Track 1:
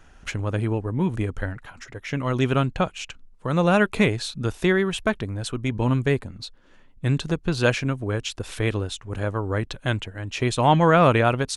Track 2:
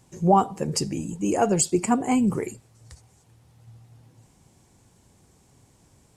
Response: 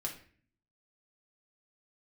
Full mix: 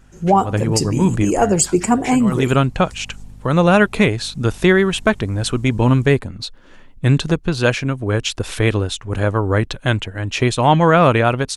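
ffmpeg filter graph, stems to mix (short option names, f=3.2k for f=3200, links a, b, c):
-filter_complex "[0:a]volume=-2.5dB[a];[1:a]aeval=exprs='val(0)+0.00562*(sin(2*PI*50*n/s)+sin(2*PI*2*50*n/s)/2+sin(2*PI*3*50*n/s)/3+sin(2*PI*4*50*n/s)/4+sin(2*PI*5*50*n/s)/5)':c=same,volume=-4dB,asplit=2[b][c];[c]apad=whole_len=509810[d];[a][d]sidechaincompress=threshold=-32dB:ratio=8:attack=31:release=128[e];[e][b]amix=inputs=2:normalize=0,dynaudnorm=f=160:g=3:m=12.5dB"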